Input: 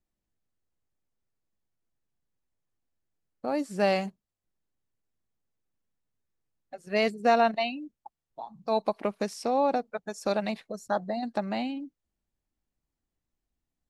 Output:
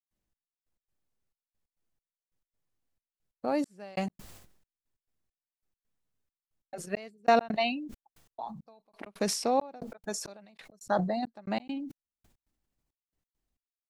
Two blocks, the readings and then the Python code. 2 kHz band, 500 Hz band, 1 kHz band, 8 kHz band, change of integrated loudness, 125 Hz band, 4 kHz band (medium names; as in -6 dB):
-4.0 dB, -4.5 dB, -3.0 dB, +7.5 dB, -3.0 dB, no reading, -1.5 dB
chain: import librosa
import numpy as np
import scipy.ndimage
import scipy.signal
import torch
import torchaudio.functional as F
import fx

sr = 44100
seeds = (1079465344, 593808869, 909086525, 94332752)

y = fx.step_gate(x, sr, bpm=136, pattern='.xx...x.xxxx..x', floor_db=-60.0, edge_ms=4.5)
y = fx.sustainer(y, sr, db_per_s=63.0)